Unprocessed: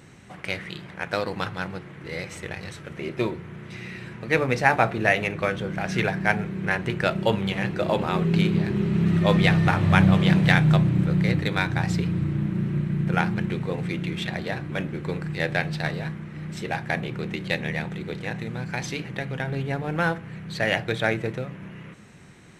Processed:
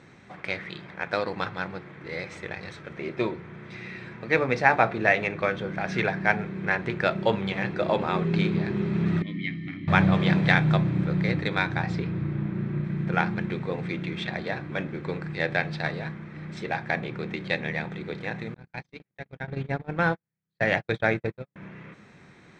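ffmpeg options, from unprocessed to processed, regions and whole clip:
-filter_complex "[0:a]asettb=1/sr,asplit=3[s0][s1][s2];[s0]atrim=end=9.224[s3];[s1]atrim=start=9.22:end=9.88,asetpts=PTS-STARTPTS,afade=t=in:d=0.004:c=qsin,afade=t=out:st=0.656:d=0.004:c=qsin,asplit=3[s4][s5][s6];[s4]bandpass=f=270:t=q:w=8,volume=1[s7];[s5]bandpass=f=2290:t=q:w=8,volume=0.501[s8];[s6]bandpass=f=3010:t=q:w=8,volume=0.355[s9];[s7][s8][s9]amix=inputs=3:normalize=0,lowshelf=f=160:g=6.5,aecho=1:1:1:0.66,atrim=end_sample=29106[s10];[s2]atrim=start=9.876[s11];[s3][s10]acrossfade=d=0.004:c1=hsin:c2=qsin[s12];[s12][s11]acrossfade=d=0.004:c1=qsin:c2=hsin,asettb=1/sr,asplit=3[s13][s14][s15];[s13]atrim=end=11.824[s16];[s14]atrim=start=11.82:end=12.84,asetpts=PTS-STARTPTS,afade=t=in:d=0.004:c=qsin,afade=t=out:st=1.016:d=0.004:c=qsin,highshelf=f=4700:g=-8.5,asplit=2[s17][s18];[s18]adelay=26,volume=0.251[s19];[s17][s19]amix=inputs=2:normalize=0,atrim=end_sample=44982[s20];[s15]atrim=start=12.836[s21];[s16][s20]acrossfade=d=0.004:c1=hsin:c2=qsin[s22];[s22][s21]acrossfade=d=0.004:c1=qsin:c2=hsin,asettb=1/sr,asplit=3[s23][s24][s25];[s23]atrim=end=18.544[s26];[s24]atrim=start=18.54:end=21.56,asetpts=PTS-STARTPTS,afade=t=in:d=0.004:c=qsin,afade=t=out:st=3.016:d=0.004:c=qsin,agate=range=0.00282:threshold=0.0398:ratio=16:release=100:detection=peak,lowshelf=f=150:g=8[s27];[s25]atrim=start=21.556[s28];[s26][s27]acrossfade=d=0.004:c1=hsin:c2=qsin[s29];[s29][s28]acrossfade=d=0.004:c1=qsin:c2=hsin,lowpass=4300,lowshelf=f=150:g=-8.5,bandreject=f=2900:w=8.3"

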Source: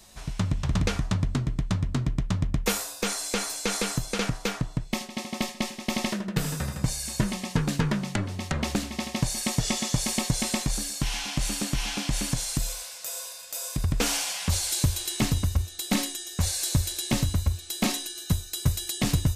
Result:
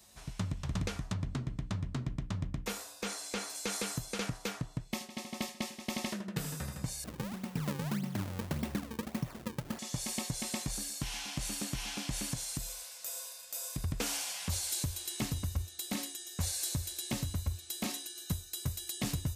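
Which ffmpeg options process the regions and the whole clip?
-filter_complex "[0:a]asettb=1/sr,asplit=3[s0][s1][s2];[s0]atrim=end=1.134[s3];[s1]atrim=start=1.13:end=3.55,asetpts=PTS-STARTPTS,afade=t=in:d=0.004:c=qsin,afade=t=out:st=2.416:d=0.004:c=qsin,highshelf=f=8300:g=-9.5,bandreject=f=60:t=h:w=6,bandreject=f=120:t=h:w=6,bandreject=f=180:t=h:w=6,bandreject=f=240:t=h:w=6,bandreject=f=300:t=h:w=6,bandreject=f=360:t=h:w=6,bandreject=f=420:t=h:w=6,bandreject=f=480:t=h:w=6,bandreject=f=540:t=h:w=6[s4];[s2]atrim=start=3.546[s5];[s3][s4]acrossfade=d=0.004:c1=hsin:c2=qsin[s6];[s6][s5]acrossfade=d=0.004:c1=qsin:c2=hsin,asettb=1/sr,asplit=3[s7][s8][s9];[s7]atrim=end=7.044[s10];[s8]atrim=start=7.04:end=9.79,asetpts=PTS-STARTPTS,afade=t=in:d=0.004:c=qsin,afade=t=out:st=2.746:d=0.004:c=qsin,lowpass=6100,equalizer=f=170:w=0.58:g=9,acrusher=samples=37:mix=1:aa=0.000001:lfo=1:lforange=59.2:lforate=1.7[s11];[s9]atrim=start=9.786[s12];[s10][s11]acrossfade=d=0.004:c1=hsin:c2=qsin[s13];[s13][s12]acrossfade=d=0.004:c1=qsin:c2=hsin,highpass=45,highshelf=f=10000:g=6,alimiter=limit=0.211:level=0:latency=1:release=447,volume=0.376"

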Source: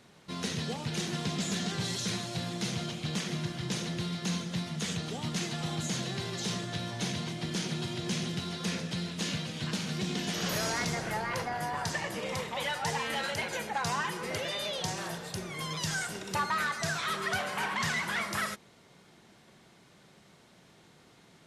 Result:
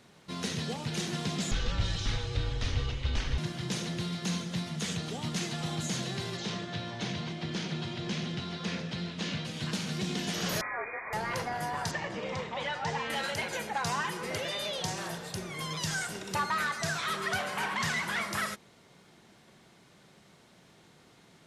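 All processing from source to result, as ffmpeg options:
-filter_complex "[0:a]asettb=1/sr,asplit=3[s0][s1][s2];[s0]atrim=end=1.514[s3];[s1]atrim=start=1.51:end=3.38,asetpts=PTS-STARTPTS,afade=t=in:d=0.004:c=qsin,afade=t=out:st=1.866:d=0.004:c=qsin,lowpass=4900,lowshelf=f=390:g=7,afreqshift=-220[s4];[s2]atrim=start=3.376[s5];[s3][s4]acrossfade=d=0.004:c1=hsin:c2=qsin[s6];[s6][s5]acrossfade=d=0.004:c1=qsin:c2=hsin,asettb=1/sr,asplit=3[s7][s8][s9];[s7]atrim=end=6.374[s10];[s8]atrim=start=6.37:end=9.45,asetpts=PTS-STARTPTS,afade=t=in:d=0.004:c=qsin,afade=t=out:st=3.076:d=0.004:c=qsin,lowpass=4500,bandreject=f=60:t=h:w=6,bandreject=f=120:t=h:w=6,bandreject=f=180:t=h:w=6,bandreject=f=240:t=h:w=6,bandreject=f=300:t=h:w=6,bandreject=f=360:t=h:w=6,bandreject=f=420:t=h:w=6,bandreject=f=480:t=h:w=6[s11];[s9]atrim=start=9.446[s12];[s10][s11]acrossfade=d=0.004:c1=hsin:c2=qsin[s13];[s13][s12]acrossfade=d=0.004:c1=qsin:c2=hsin,asettb=1/sr,asplit=3[s14][s15][s16];[s14]atrim=end=10.614[s17];[s15]atrim=start=10.61:end=11.13,asetpts=PTS-STARTPTS,afade=t=in:d=0.004:c=qsin,afade=t=out:st=0.516:d=0.004:c=qsin,highpass=f=680:p=1,lowpass=f=2200:t=q:w=0.5098,lowpass=f=2200:t=q:w=0.6013,lowpass=f=2200:t=q:w=0.9,lowpass=f=2200:t=q:w=2.563,afreqshift=-2600[s18];[s16]atrim=start=11.126[s19];[s17][s18]acrossfade=d=0.004:c1=hsin:c2=qsin[s20];[s20][s19]acrossfade=d=0.004:c1=qsin:c2=hsin,asettb=1/sr,asplit=3[s21][s22][s23];[s21]atrim=end=11.914[s24];[s22]atrim=start=11.91:end=13.1,asetpts=PTS-STARTPTS,afade=t=in:d=0.004:c=qsin,afade=t=out:st=1.186:d=0.004:c=qsin,lowpass=f=7700:w=0.5412,lowpass=f=7700:w=1.3066,aemphasis=mode=reproduction:type=50kf[s25];[s23]atrim=start=13.096[s26];[s24][s25]acrossfade=d=0.004:c1=hsin:c2=qsin[s27];[s27][s26]acrossfade=d=0.004:c1=qsin:c2=hsin"

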